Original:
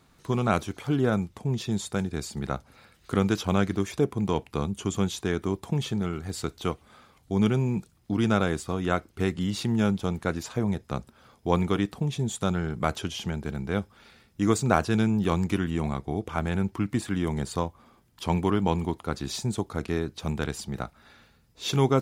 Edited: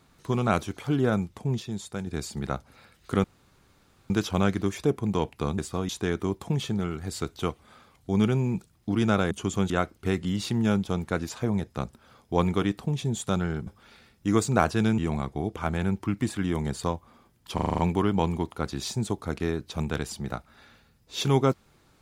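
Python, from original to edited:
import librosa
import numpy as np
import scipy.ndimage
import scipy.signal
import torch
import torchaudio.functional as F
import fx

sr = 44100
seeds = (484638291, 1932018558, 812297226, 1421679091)

y = fx.edit(x, sr, fx.clip_gain(start_s=1.6, length_s=0.47, db=-5.5),
    fx.insert_room_tone(at_s=3.24, length_s=0.86),
    fx.swap(start_s=4.72, length_s=0.39, other_s=8.53, other_length_s=0.31),
    fx.cut(start_s=12.81, length_s=1.0),
    fx.cut(start_s=15.12, length_s=0.58),
    fx.stutter(start_s=18.26, slice_s=0.04, count=7), tone=tone)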